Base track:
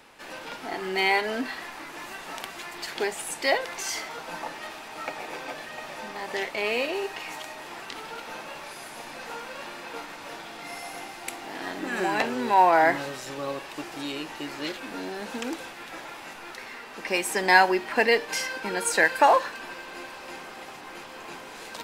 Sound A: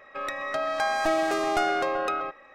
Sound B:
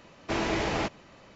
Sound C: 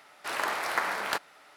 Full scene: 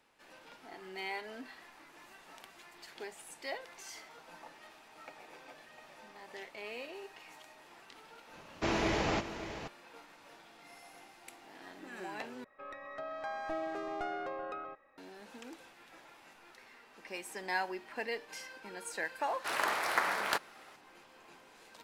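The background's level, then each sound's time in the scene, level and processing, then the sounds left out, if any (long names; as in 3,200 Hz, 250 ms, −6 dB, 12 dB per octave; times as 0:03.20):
base track −17 dB
0:08.33: mix in B −3 dB + single-tap delay 569 ms −11.5 dB
0:12.44: overwrite with A −12.5 dB + low-pass filter 1,700 Hz 6 dB per octave
0:19.20: mix in C −2 dB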